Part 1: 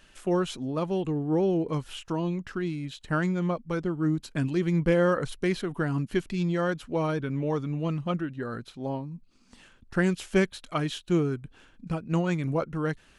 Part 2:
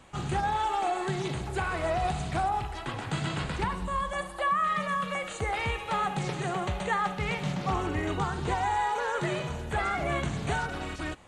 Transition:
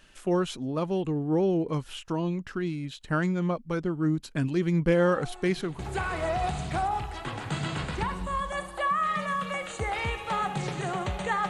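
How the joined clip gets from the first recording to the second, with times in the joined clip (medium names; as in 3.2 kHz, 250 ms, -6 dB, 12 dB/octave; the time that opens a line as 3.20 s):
part 1
4.98 s: add part 2 from 0.59 s 0.81 s -16 dB
5.79 s: go over to part 2 from 1.40 s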